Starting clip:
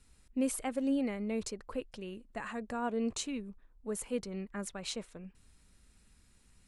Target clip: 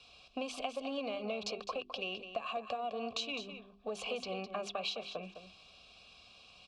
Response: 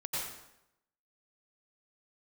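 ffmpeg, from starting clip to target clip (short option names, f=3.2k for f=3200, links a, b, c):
-filter_complex "[0:a]lowpass=8.7k,lowshelf=f=330:g=7.5,bandreject=f=50:t=h:w=6,bandreject=f=100:t=h:w=6,bandreject=f=150:t=h:w=6,bandreject=f=200:t=h:w=6,bandreject=f=250:t=h:w=6,bandreject=f=300:t=h:w=6,bandreject=f=350:t=h:w=6,bandreject=f=400:t=h:w=6,aecho=1:1:1.8:0.33,acrossover=split=140|5000[a][b][c];[b]aexciter=amount=6.4:drive=8.8:freq=2.9k[d];[a][d][c]amix=inputs=3:normalize=0,acrossover=split=300|3000[e][f][g];[f]acompressor=threshold=-37dB:ratio=6[h];[e][h][g]amix=inputs=3:normalize=0,asplit=2[i][j];[j]asoftclip=type=hard:threshold=-36.5dB,volume=-5dB[k];[i][k]amix=inputs=2:normalize=0,asplit=3[l][m][n];[l]bandpass=f=730:t=q:w=8,volume=0dB[o];[m]bandpass=f=1.09k:t=q:w=8,volume=-6dB[p];[n]bandpass=f=2.44k:t=q:w=8,volume=-9dB[q];[o][p][q]amix=inputs=3:normalize=0,acompressor=threshold=-52dB:ratio=6,aecho=1:1:208:0.316,volume=16.5dB"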